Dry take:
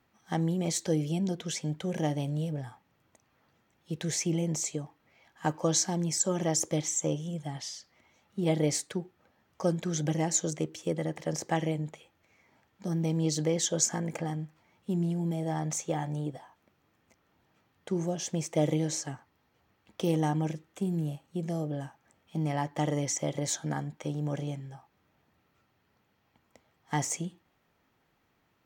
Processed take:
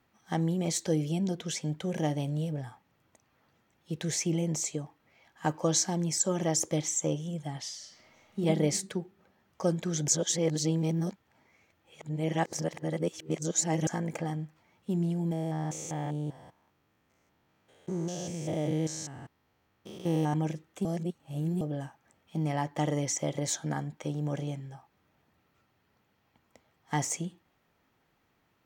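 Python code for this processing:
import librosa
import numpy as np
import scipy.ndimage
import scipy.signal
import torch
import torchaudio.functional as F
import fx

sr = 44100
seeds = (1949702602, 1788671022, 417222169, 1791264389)

y = fx.reverb_throw(x, sr, start_s=7.75, length_s=0.66, rt60_s=1.2, drr_db=-3.0)
y = fx.spec_steps(y, sr, hold_ms=200, at=(15.32, 20.34))
y = fx.edit(y, sr, fx.reverse_span(start_s=10.08, length_s=3.79),
    fx.reverse_span(start_s=20.85, length_s=0.76), tone=tone)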